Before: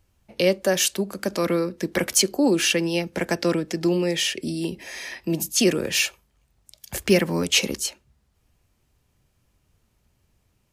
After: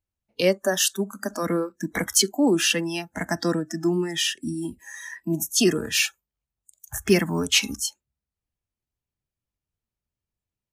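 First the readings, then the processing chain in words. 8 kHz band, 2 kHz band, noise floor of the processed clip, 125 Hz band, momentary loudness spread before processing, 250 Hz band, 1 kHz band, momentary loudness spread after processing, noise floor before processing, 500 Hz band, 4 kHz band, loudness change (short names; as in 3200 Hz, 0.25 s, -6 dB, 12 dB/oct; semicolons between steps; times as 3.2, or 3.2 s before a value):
0.0 dB, -0.5 dB, under -85 dBFS, -1.0 dB, 10 LU, -1.0 dB, 0.0 dB, 11 LU, -68 dBFS, -2.0 dB, -0.5 dB, -0.5 dB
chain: spectral noise reduction 23 dB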